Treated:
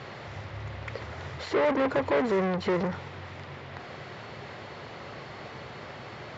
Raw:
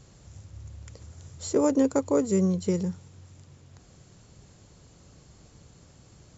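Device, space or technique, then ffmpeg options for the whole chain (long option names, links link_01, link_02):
overdrive pedal into a guitar cabinet: -filter_complex "[0:a]asplit=2[link_01][link_02];[link_02]highpass=frequency=720:poles=1,volume=34dB,asoftclip=type=tanh:threshold=-12.5dB[link_03];[link_01][link_03]amix=inputs=2:normalize=0,lowpass=frequency=1300:poles=1,volume=-6dB,highpass=94,equalizer=frequency=180:width_type=q:width=4:gain=-8,equalizer=frequency=290:width_type=q:width=4:gain=-8,equalizer=frequency=480:width_type=q:width=4:gain=-3,equalizer=frequency=2000:width_type=q:width=4:gain=6,lowpass=frequency=4300:width=0.5412,lowpass=frequency=4300:width=1.3066,volume=-2.5dB"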